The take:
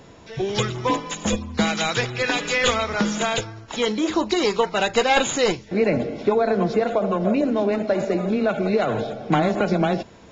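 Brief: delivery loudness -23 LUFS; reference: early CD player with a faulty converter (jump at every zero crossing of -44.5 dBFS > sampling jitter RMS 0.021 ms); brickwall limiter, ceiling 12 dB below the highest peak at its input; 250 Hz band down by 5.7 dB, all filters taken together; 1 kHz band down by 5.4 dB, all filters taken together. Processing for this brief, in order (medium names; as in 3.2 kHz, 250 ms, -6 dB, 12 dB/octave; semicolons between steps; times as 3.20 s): peaking EQ 250 Hz -7.5 dB; peaking EQ 1 kHz -7 dB; peak limiter -17.5 dBFS; jump at every zero crossing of -44.5 dBFS; sampling jitter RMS 0.021 ms; trim +4.5 dB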